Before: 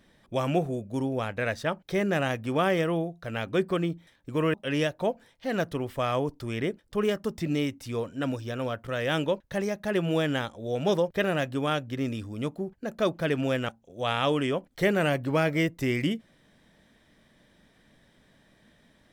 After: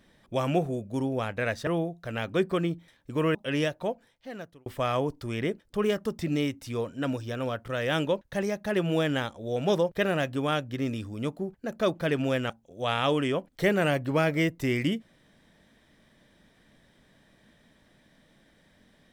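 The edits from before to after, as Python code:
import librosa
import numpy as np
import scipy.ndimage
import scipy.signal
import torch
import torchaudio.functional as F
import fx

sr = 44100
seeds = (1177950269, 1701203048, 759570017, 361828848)

y = fx.edit(x, sr, fx.cut(start_s=1.67, length_s=1.19),
    fx.fade_out_span(start_s=4.73, length_s=1.12), tone=tone)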